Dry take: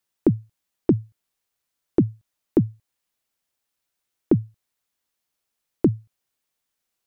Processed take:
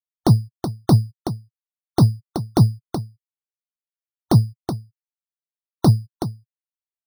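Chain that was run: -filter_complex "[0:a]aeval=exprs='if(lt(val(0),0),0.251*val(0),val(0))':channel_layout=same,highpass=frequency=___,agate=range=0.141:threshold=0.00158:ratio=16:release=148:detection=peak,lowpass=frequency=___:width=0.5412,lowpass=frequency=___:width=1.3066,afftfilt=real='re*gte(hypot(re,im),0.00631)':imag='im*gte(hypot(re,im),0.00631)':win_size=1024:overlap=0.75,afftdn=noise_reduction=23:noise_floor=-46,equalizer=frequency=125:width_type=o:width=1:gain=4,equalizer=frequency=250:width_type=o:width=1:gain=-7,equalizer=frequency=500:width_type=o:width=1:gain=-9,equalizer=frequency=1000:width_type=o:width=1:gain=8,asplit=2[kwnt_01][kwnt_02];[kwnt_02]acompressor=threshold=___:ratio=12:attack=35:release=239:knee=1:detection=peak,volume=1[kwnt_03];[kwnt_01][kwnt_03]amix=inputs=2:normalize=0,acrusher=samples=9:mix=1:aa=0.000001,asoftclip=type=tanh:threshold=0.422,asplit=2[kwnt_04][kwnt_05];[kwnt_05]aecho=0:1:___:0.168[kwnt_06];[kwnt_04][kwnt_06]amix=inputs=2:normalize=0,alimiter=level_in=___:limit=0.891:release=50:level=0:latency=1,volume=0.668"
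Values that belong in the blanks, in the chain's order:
98, 1400, 1400, 0.0112, 375, 7.94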